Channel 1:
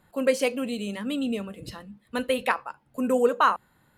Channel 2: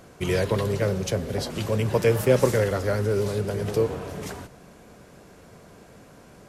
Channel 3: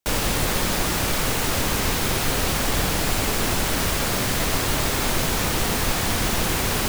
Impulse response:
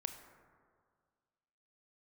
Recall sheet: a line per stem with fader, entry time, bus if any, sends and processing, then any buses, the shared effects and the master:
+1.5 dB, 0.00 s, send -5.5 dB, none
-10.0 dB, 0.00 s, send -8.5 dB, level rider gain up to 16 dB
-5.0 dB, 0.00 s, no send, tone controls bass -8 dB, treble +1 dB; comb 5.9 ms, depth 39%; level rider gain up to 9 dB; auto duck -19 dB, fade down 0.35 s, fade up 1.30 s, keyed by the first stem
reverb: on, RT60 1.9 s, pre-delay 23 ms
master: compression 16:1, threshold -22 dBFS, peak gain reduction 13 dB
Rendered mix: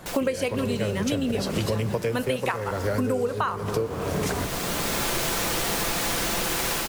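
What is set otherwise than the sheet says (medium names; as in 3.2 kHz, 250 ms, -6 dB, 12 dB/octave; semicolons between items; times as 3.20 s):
stem 1 +1.5 dB -> +13.0 dB; stem 2 -10.0 dB -> -0.5 dB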